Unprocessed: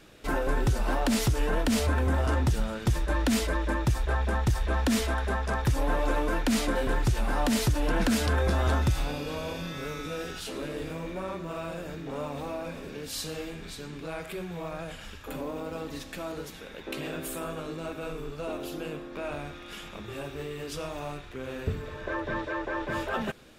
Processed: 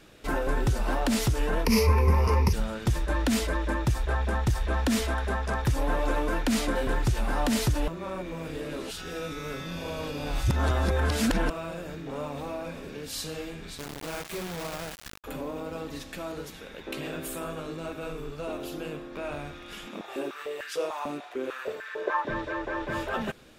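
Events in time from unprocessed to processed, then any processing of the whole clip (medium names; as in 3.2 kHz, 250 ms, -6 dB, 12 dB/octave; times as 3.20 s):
1.65–2.53 s: rippled EQ curve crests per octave 0.84, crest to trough 17 dB
7.88–11.50 s: reverse
13.78–15.24 s: word length cut 6-bit, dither none
19.86–22.29 s: step-sequenced high-pass 6.7 Hz 250–1600 Hz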